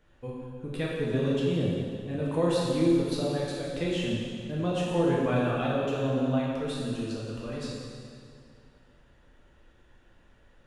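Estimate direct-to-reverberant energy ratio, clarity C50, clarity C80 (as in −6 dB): −6.0 dB, −1.5 dB, 0.0 dB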